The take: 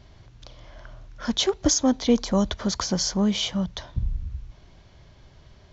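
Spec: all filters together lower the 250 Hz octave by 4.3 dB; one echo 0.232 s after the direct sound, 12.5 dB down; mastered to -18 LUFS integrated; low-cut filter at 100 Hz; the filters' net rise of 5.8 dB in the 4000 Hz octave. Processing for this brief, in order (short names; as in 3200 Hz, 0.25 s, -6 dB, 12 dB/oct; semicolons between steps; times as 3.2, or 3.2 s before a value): HPF 100 Hz; bell 250 Hz -5 dB; bell 4000 Hz +7.5 dB; echo 0.232 s -12.5 dB; gain +4.5 dB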